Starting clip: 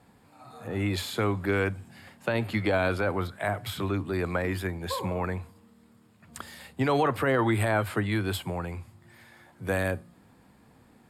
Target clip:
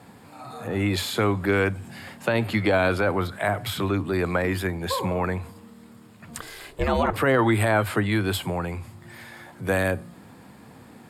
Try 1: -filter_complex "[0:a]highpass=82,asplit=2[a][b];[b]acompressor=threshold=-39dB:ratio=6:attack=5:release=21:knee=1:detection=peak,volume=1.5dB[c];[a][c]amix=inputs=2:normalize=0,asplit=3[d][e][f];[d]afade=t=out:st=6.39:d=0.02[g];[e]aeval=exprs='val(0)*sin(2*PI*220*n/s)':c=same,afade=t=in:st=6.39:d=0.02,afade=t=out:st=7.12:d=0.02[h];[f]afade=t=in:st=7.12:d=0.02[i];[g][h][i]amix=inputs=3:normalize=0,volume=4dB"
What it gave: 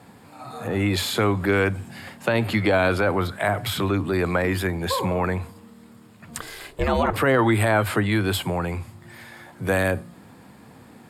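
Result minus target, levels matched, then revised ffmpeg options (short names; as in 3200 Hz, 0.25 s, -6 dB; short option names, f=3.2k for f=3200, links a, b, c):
compressor: peak gain reduction -10 dB
-filter_complex "[0:a]highpass=82,asplit=2[a][b];[b]acompressor=threshold=-51dB:ratio=6:attack=5:release=21:knee=1:detection=peak,volume=1.5dB[c];[a][c]amix=inputs=2:normalize=0,asplit=3[d][e][f];[d]afade=t=out:st=6.39:d=0.02[g];[e]aeval=exprs='val(0)*sin(2*PI*220*n/s)':c=same,afade=t=in:st=6.39:d=0.02,afade=t=out:st=7.12:d=0.02[h];[f]afade=t=in:st=7.12:d=0.02[i];[g][h][i]amix=inputs=3:normalize=0,volume=4dB"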